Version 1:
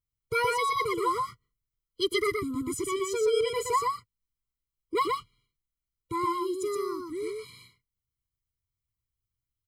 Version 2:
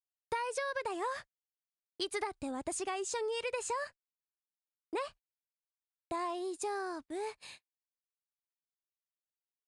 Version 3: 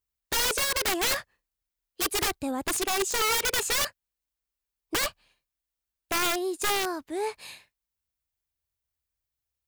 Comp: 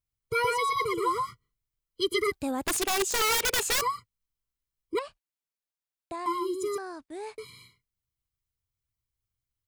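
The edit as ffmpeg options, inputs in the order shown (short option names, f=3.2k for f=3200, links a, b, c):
-filter_complex "[1:a]asplit=2[a][b];[0:a]asplit=4[c][d][e][f];[c]atrim=end=2.322[g];[2:a]atrim=start=2.318:end=3.812[h];[d]atrim=start=3.808:end=4.992[i];[a]atrim=start=4.988:end=6.262[j];[e]atrim=start=6.258:end=6.782[k];[b]atrim=start=6.778:end=7.382[l];[f]atrim=start=7.378[m];[g][h]acrossfade=d=0.004:c1=hsin:c2=hsin[n];[n][i]acrossfade=d=0.004:c1=hsin:c2=hsin[o];[o][j]acrossfade=d=0.004:c1=hsin:c2=hsin[p];[p][k]acrossfade=d=0.004:c1=hsin:c2=hsin[q];[q][l]acrossfade=d=0.004:c1=hsin:c2=hsin[r];[r][m]acrossfade=d=0.004:c1=hsin:c2=hsin"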